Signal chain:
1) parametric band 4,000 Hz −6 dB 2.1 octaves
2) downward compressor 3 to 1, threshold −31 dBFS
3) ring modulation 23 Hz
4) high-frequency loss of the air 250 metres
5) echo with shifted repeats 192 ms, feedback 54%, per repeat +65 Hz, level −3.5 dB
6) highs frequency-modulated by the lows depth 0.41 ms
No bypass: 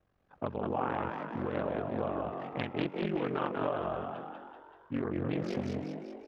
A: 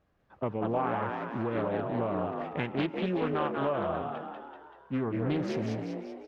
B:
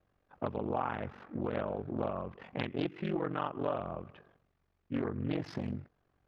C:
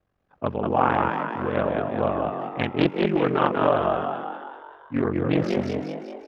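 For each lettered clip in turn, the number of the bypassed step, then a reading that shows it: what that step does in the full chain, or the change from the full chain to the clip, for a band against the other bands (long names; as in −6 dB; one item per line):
3, change in crest factor −3.0 dB
5, change in momentary loudness spread −1 LU
2, average gain reduction 8.0 dB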